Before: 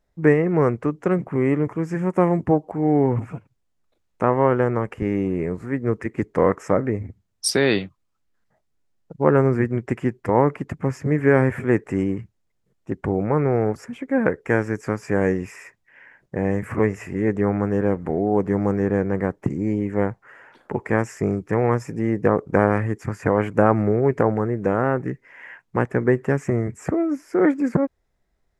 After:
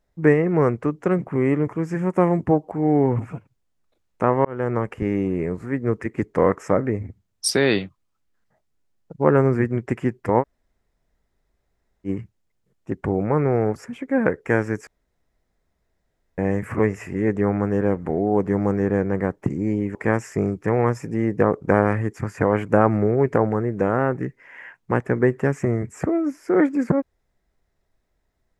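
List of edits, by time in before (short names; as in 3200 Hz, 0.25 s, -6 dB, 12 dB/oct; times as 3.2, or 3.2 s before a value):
4.45–4.75 fade in
10.41–12.07 room tone, crossfade 0.06 s
14.87–16.38 room tone
19.95–20.8 cut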